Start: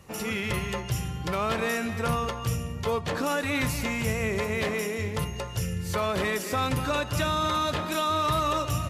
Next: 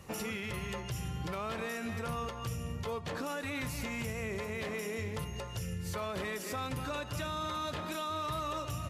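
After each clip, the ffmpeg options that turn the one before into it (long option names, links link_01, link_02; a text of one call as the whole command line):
ffmpeg -i in.wav -af "alimiter=level_in=4.5dB:limit=-24dB:level=0:latency=1:release=364,volume=-4.5dB" out.wav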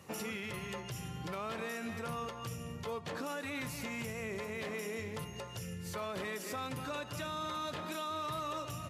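ffmpeg -i in.wav -af "highpass=120,volume=-2dB" out.wav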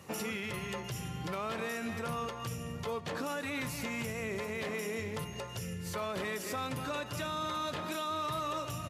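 ffmpeg -i in.wav -af "aecho=1:1:705:0.0944,volume=3dB" out.wav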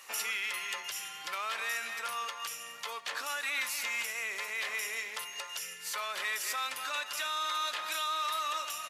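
ffmpeg -i in.wav -af "highpass=1400,volume=7dB" out.wav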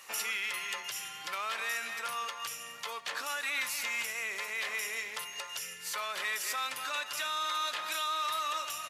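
ffmpeg -i in.wav -af "lowshelf=frequency=150:gain=10" out.wav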